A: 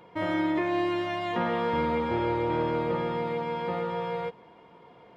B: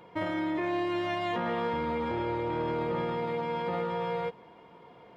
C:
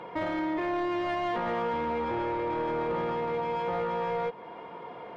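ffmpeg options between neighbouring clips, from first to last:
-af "alimiter=limit=-23.5dB:level=0:latency=1:release=12"
-filter_complex "[0:a]acompressor=threshold=-44dB:ratio=1.5,asplit=2[a][b];[b]highpass=f=720:p=1,volume=14dB,asoftclip=type=tanh:threshold=-29dB[c];[a][c]amix=inputs=2:normalize=0,lowpass=f=1.2k:p=1,volume=-6dB,volume=6.5dB"

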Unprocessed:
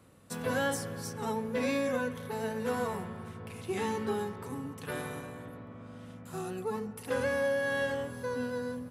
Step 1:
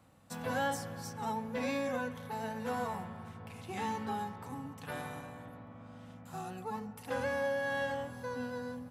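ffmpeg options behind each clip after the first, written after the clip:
-af "equalizer=f=400:t=o:w=0.33:g=-11,equalizer=f=800:t=o:w=0.33:g=8,equalizer=f=10k:t=o:w=0.33:g=-6,volume=-3.5dB"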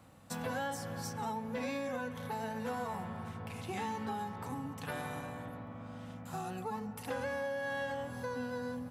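-af "acompressor=threshold=-41dB:ratio=3,volume=4.5dB"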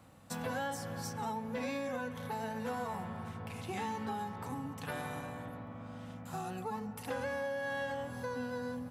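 -af anull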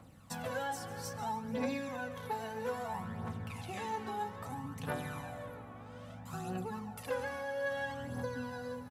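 -af "aecho=1:1:148|296|444|592|740|888:0.168|0.101|0.0604|0.0363|0.0218|0.0131,aphaser=in_gain=1:out_gain=1:delay=2.8:decay=0.52:speed=0.61:type=triangular,volume=-2dB"

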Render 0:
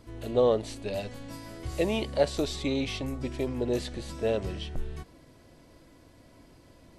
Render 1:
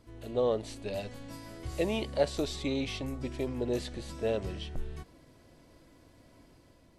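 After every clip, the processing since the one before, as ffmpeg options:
-af "dynaudnorm=f=220:g=5:m=3.5dB,volume=-6.5dB"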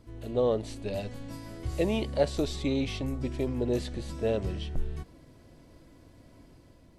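-af "lowshelf=f=360:g=6"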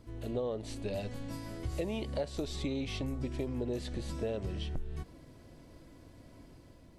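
-af "acompressor=threshold=-32dB:ratio=6"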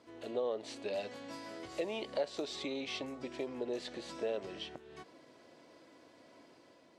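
-af "highpass=410,lowpass=6.3k,volume=2dB"

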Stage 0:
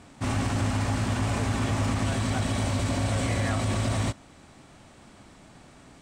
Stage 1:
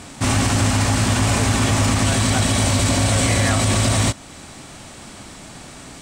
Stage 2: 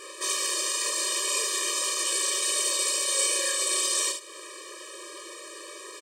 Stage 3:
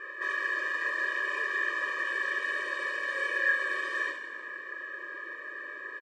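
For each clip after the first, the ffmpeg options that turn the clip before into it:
-filter_complex "[0:a]highshelf=f=3.3k:g=9.5,asplit=2[a][b];[b]alimiter=level_in=1dB:limit=-24dB:level=0:latency=1:release=257,volume=-1dB,volume=-0.5dB[c];[a][c]amix=inputs=2:normalize=0,volume=5.5dB"
-filter_complex "[0:a]acrossover=split=140|3000[a][b][c];[b]acompressor=threshold=-31dB:ratio=6[d];[a][d][c]amix=inputs=3:normalize=0,asplit=2[e][f];[f]aecho=0:1:31|73:0.531|0.447[g];[e][g]amix=inputs=2:normalize=0,afftfilt=real='re*eq(mod(floor(b*sr/1024/320),2),1)':imag='im*eq(mod(floor(b*sr/1024/320),2),1)':win_size=1024:overlap=0.75"
-filter_complex "[0:a]asplit=6[a][b][c][d][e][f];[b]adelay=165,afreqshift=-38,volume=-11dB[g];[c]adelay=330,afreqshift=-76,volume=-17.6dB[h];[d]adelay=495,afreqshift=-114,volume=-24.1dB[i];[e]adelay=660,afreqshift=-152,volume=-30.7dB[j];[f]adelay=825,afreqshift=-190,volume=-37.2dB[k];[a][g][h][i][j][k]amix=inputs=6:normalize=0,acrusher=bits=7:mode=log:mix=0:aa=0.000001,lowpass=f=1.7k:t=q:w=11,volume=-6.5dB"

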